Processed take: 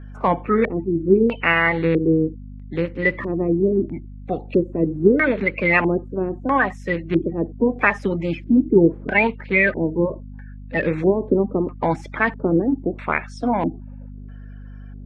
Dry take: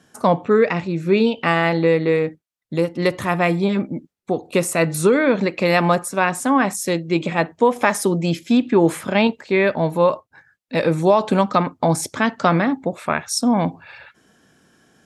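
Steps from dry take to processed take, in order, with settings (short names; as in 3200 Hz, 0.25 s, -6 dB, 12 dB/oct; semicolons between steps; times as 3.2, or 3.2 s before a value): bin magnitudes rounded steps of 30 dB; hum 50 Hz, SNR 14 dB; LFO low-pass square 0.77 Hz 370–2200 Hz; gain -3 dB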